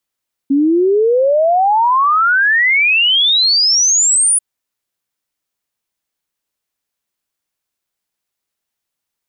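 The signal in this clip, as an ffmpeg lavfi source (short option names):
-f lavfi -i "aevalsrc='0.355*clip(min(t,3.89-t)/0.01,0,1)*sin(2*PI*270*3.89/log(10000/270)*(exp(log(10000/270)*t/3.89)-1))':d=3.89:s=44100"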